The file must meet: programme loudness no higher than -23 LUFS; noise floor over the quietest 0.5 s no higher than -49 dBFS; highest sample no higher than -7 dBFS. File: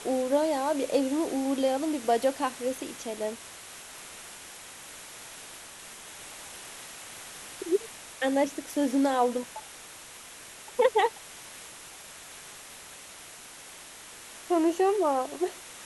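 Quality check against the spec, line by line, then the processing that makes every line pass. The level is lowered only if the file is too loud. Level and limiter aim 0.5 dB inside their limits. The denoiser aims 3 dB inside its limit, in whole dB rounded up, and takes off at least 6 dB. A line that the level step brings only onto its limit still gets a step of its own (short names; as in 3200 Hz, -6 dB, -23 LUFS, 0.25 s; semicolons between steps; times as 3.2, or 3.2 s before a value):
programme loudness -28.0 LUFS: OK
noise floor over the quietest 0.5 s -47 dBFS: fail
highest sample -11.0 dBFS: OK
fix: denoiser 6 dB, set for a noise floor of -47 dBFS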